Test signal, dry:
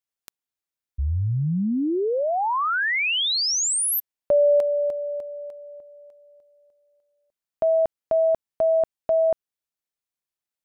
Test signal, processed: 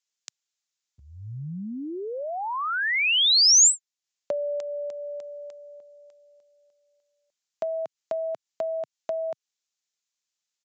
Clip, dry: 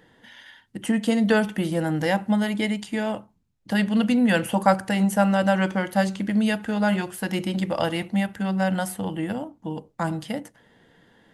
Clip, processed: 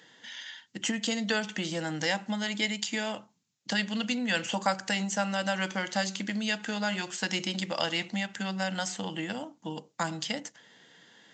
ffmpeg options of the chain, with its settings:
ffmpeg -i in.wav -af "highpass=frequency=130:width=0.5412,highpass=frequency=130:width=1.3066,acompressor=threshold=-30dB:ratio=2:attack=59:release=362:knee=1:detection=peak,crystalizer=i=9.5:c=0,aresample=16000,aresample=44100,volume=-6.5dB" out.wav

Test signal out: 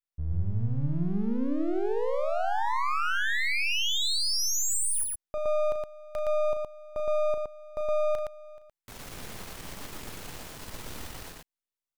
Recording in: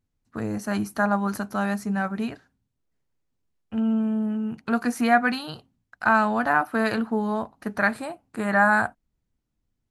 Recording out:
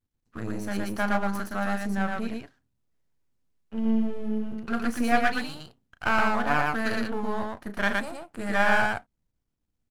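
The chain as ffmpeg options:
ffmpeg -i in.wav -af "aeval=exprs='if(lt(val(0),0),0.251*val(0),val(0))':channel_layout=same,aecho=1:1:34.99|116.6:0.282|0.794,volume=-2dB" out.wav

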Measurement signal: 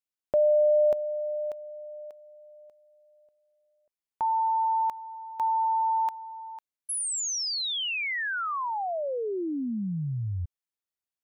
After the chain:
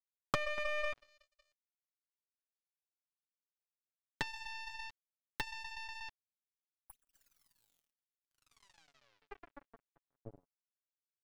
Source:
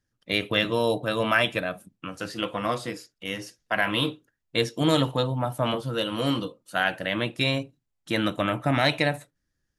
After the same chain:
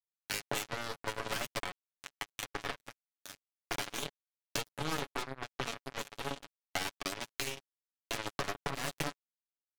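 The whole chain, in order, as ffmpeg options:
ffmpeg -i in.wav -filter_complex "[0:a]bandreject=frequency=60:width_type=h:width=6,bandreject=frequency=120:width_type=h:width=6,bandreject=frequency=180:width_type=h:width=6,bandreject=frequency=240:width_type=h:width=6,bandreject=frequency=300:width_type=h:width=6,bandreject=frequency=360:width_type=h:width=6,bandreject=frequency=420:width_type=h:width=6,aeval=exprs='0.447*(cos(1*acos(clip(val(0)/0.447,-1,1)))-cos(1*PI/2))+0.1*(cos(3*acos(clip(val(0)/0.447,-1,1)))-cos(3*PI/2))+0.112*(cos(4*acos(clip(val(0)/0.447,-1,1)))-cos(4*PI/2))+0.0447*(cos(6*acos(clip(val(0)/0.447,-1,1)))-cos(6*PI/2))+0.126*(cos(8*acos(clip(val(0)/0.447,-1,1)))-cos(8*PI/2))':channel_layout=same,flanger=delay=0:depth=6.9:regen=-82:speed=0.33:shape=triangular,equalizer=frequency=130:width=2.1:gain=6,acrossover=split=110|1200[link_01][link_02][link_03];[link_01]asoftclip=type=tanh:threshold=-28dB[link_04];[link_04][link_02][link_03]amix=inputs=3:normalize=0,acompressor=threshold=-45dB:ratio=2.5:attack=29:release=53:knee=6:detection=peak,aecho=1:1:242|484:0.106|0.0191,acrusher=bits=4:mix=0:aa=0.5,aecho=1:1:7.1:0.48,adynamicequalizer=threshold=0.00224:dfrequency=2300:dqfactor=0.7:tfrequency=2300:tqfactor=0.7:attack=5:release=100:ratio=0.375:range=1.5:mode=cutabove:tftype=highshelf,volume=3.5dB" out.wav

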